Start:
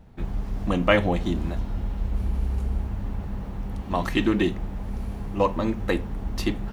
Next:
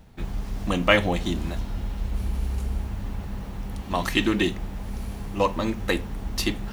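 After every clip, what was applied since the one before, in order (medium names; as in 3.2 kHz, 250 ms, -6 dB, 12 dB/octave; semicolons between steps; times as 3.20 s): treble shelf 2.2 kHz +10.5 dB; reverse; upward compressor, threshold -34 dBFS; reverse; trim -1.5 dB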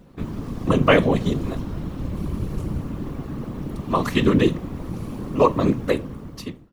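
fade out at the end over 0.99 s; small resonant body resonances 220/440/1100 Hz, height 12 dB, ringing for 25 ms; whisper effect; trim -2.5 dB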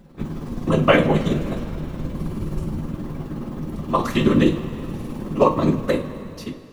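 tremolo 19 Hz, depth 53%; two-slope reverb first 0.24 s, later 2.8 s, from -18 dB, DRR 3 dB; trim +1 dB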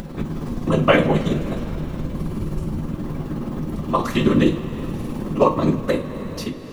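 upward compressor, threshold -20 dBFS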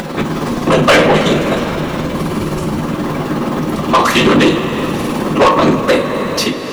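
overdrive pedal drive 26 dB, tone 7.4 kHz, clips at -1 dBFS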